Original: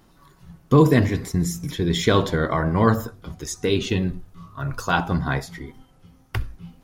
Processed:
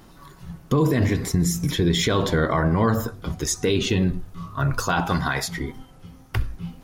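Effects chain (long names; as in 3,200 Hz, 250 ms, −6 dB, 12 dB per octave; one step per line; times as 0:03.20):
0:05.06–0:05.48: tilt shelving filter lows −6.5 dB, about 740 Hz
in parallel at +2 dB: downward compressor, threshold −27 dBFS, peak gain reduction 16.5 dB
on the sum: brickwall limiter −11.5 dBFS, peak gain reduction 8.5 dB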